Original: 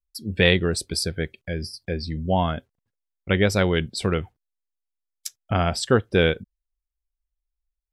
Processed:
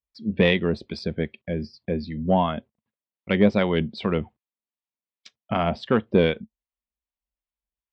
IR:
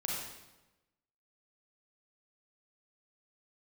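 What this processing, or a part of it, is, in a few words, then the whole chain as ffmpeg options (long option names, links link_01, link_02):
guitar amplifier with harmonic tremolo: -filter_complex "[0:a]acrossover=split=790[link_01][link_02];[link_01]aeval=exprs='val(0)*(1-0.5/2+0.5/2*cos(2*PI*2.6*n/s))':channel_layout=same[link_03];[link_02]aeval=exprs='val(0)*(1-0.5/2-0.5/2*cos(2*PI*2.6*n/s))':channel_layout=same[link_04];[link_03][link_04]amix=inputs=2:normalize=0,asoftclip=type=tanh:threshold=-9.5dB,highpass=81,equalizer=frequency=97:width_type=q:width=4:gain=-9,equalizer=frequency=220:width_type=q:width=4:gain=9,equalizer=frequency=610:width_type=q:width=4:gain=3,equalizer=frequency=1000:width_type=q:width=4:gain=4,equalizer=frequency=1500:width_type=q:width=4:gain=-6,lowpass=frequency=3500:width=0.5412,lowpass=frequency=3500:width=1.3066,volume=2dB"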